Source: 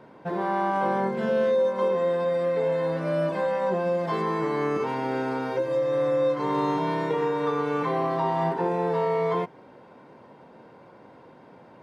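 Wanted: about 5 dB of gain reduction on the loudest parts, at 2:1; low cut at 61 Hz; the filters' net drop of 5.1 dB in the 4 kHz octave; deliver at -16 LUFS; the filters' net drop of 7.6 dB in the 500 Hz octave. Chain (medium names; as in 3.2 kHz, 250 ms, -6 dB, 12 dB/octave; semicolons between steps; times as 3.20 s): high-pass 61 Hz; peaking EQ 500 Hz -8.5 dB; peaking EQ 4 kHz -6.5 dB; compression 2:1, threshold -34 dBFS; trim +18.5 dB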